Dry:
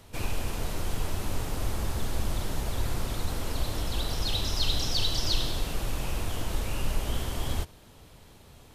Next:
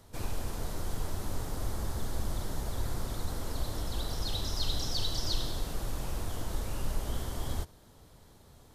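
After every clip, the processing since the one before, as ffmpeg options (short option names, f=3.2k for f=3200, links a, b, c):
-af "equalizer=f=2.6k:t=o:w=0.61:g=-8.5,volume=-4dB"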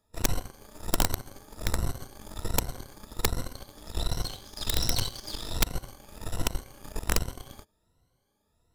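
-af "afftfilt=real='re*pow(10,15/40*sin(2*PI*(2*log(max(b,1)*sr/1024/100)/log(2)-(1.3)*(pts-256)/sr)))':imag='im*pow(10,15/40*sin(2*PI*(2*log(max(b,1)*sr/1024/100)/log(2)-(1.3)*(pts-256)/sr)))':win_size=1024:overlap=0.75,aeval=exprs='0.2*(cos(1*acos(clip(val(0)/0.2,-1,1)))-cos(1*PI/2))+0.0251*(cos(7*acos(clip(val(0)/0.2,-1,1)))-cos(7*PI/2))':c=same,aeval=exprs='(mod(6.31*val(0)+1,2)-1)/6.31':c=same"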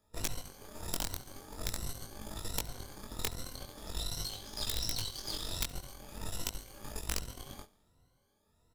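-filter_complex "[0:a]acrossover=split=2600|5900[a][b][c];[a]acompressor=threshold=-37dB:ratio=4[d];[b]acompressor=threshold=-40dB:ratio=4[e];[c]acompressor=threshold=-37dB:ratio=4[f];[d][e][f]amix=inputs=3:normalize=0,flanger=delay=18.5:depth=4.4:speed=0.43,aecho=1:1:70|140|210|280|350:0.0891|0.0526|0.031|0.0183|0.0108,volume=3.5dB"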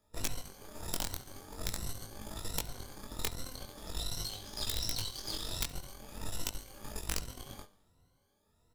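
-af "flanger=delay=3.3:depth=7.7:regen=87:speed=0.31:shape=sinusoidal,volume=4.5dB"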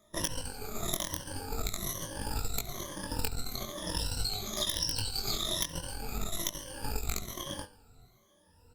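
-af "afftfilt=real='re*pow(10,17/40*sin(2*PI*(1.2*log(max(b,1)*sr/1024/100)/log(2)-(-1.1)*(pts-256)/sr)))':imag='im*pow(10,17/40*sin(2*PI*(1.2*log(max(b,1)*sr/1024/100)/log(2)-(-1.1)*(pts-256)/sr)))':win_size=1024:overlap=0.75,acompressor=threshold=-34dB:ratio=12,volume=6.5dB" -ar 48000 -c:a libopus -b:a 48k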